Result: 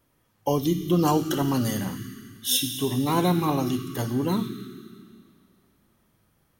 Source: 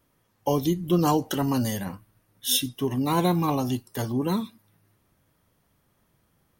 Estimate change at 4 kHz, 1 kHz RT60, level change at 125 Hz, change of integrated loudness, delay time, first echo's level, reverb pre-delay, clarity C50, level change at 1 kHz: +1.0 dB, 2.4 s, +1.0 dB, +0.5 dB, no echo audible, no echo audible, 27 ms, 6.5 dB, 0.0 dB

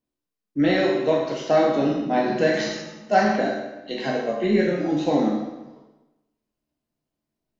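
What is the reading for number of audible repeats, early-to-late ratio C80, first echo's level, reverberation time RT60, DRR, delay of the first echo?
no echo audible, 5.0 dB, no echo audible, 1.0 s, −2.0 dB, no echo audible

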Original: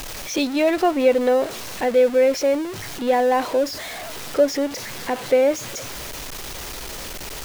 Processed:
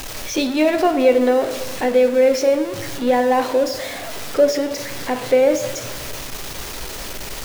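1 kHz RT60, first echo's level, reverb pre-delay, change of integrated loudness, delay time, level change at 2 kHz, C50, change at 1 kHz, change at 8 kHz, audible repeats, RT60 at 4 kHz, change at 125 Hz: 0.95 s, no echo audible, 7 ms, +2.5 dB, no echo audible, +2.0 dB, 10.0 dB, +2.0 dB, +2.0 dB, no echo audible, 0.70 s, +4.0 dB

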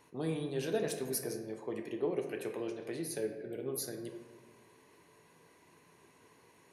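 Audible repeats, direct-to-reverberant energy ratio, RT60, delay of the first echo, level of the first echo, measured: no echo audible, 3.5 dB, 1.5 s, no echo audible, no echo audible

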